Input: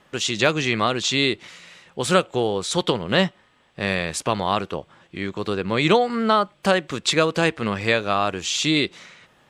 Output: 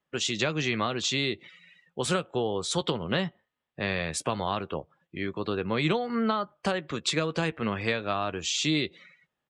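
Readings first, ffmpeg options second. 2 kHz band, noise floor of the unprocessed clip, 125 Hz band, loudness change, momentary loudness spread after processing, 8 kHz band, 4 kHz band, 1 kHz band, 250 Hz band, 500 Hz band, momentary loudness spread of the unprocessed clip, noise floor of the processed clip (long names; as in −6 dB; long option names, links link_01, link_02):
−8.0 dB, −59 dBFS, −5.0 dB, −7.5 dB, 8 LU, −5.0 dB, −7.0 dB, −8.5 dB, −6.0 dB, −8.0 dB, 10 LU, −84 dBFS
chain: -filter_complex "[0:a]afftdn=noise_reduction=23:noise_floor=-41,acrossover=split=170[link_01][link_02];[link_02]acompressor=threshold=-20dB:ratio=6[link_03];[link_01][link_03]amix=inputs=2:normalize=0,asplit=2[link_04][link_05];[link_05]adelay=13,volume=-13.5dB[link_06];[link_04][link_06]amix=inputs=2:normalize=0,volume=-4dB"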